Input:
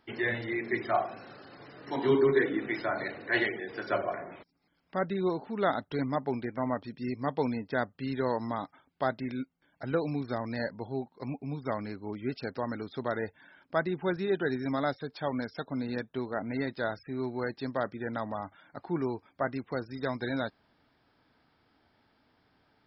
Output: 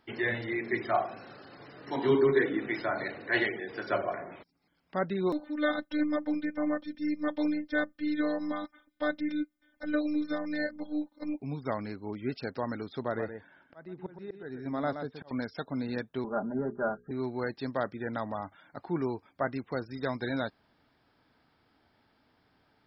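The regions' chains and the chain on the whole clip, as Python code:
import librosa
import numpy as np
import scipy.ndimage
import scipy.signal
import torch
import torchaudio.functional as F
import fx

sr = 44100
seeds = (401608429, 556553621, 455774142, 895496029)

y = fx.chain(x, sr, fx.robotise(hz=299.0),
    fx.comb(ms=3.9, depth=0.97), at=(5.32, 11.4))
y = fx.chain(y, sr, fx.auto_swell(attack_ms=601.0),
    fx.high_shelf(hz=2600.0, db=-11.0),
    fx.echo_single(ms=123, db=-8.5), at=(13.03, 15.31))
y = fx.chain(y, sr, fx.steep_lowpass(hz=1500.0, slope=72),
    fx.hum_notches(base_hz=60, count=8),
    fx.comb(ms=5.0, depth=0.8), at=(16.24, 17.11))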